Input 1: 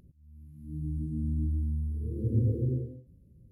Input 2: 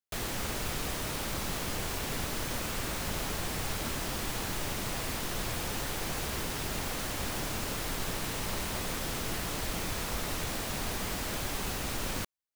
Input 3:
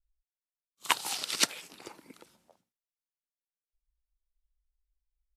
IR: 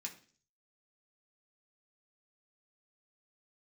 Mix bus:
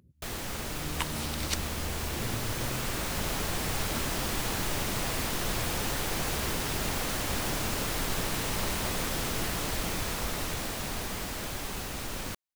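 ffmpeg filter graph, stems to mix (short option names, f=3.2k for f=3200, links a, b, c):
-filter_complex "[0:a]highpass=f=63:w=0.5412,highpass=f=63:w=1.3066,acompressor=threshold=-33dB:ratio=6,volume=-3dB,asplit=2[a][b];[b]volume=-12dB[c];[1:a]dynaudnorm=f=300:g=17:m=5dB,adelay=100,volume=-1.5dB[d];[2:a]adelay=100,volume=-7dB[e];[3:a]atrim=start_sample=2205[f];[c][f]afir=irnorm=-1:irlink=0[g];[a][d][e][g]amix=inputs=4:normalize=0"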